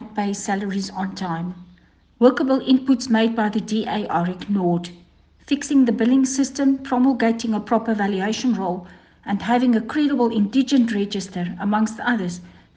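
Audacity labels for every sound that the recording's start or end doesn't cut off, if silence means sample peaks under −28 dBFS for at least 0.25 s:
2.210000	4.870000	sound
5.480000	8.800000	sound
9.270000	12.370000	sound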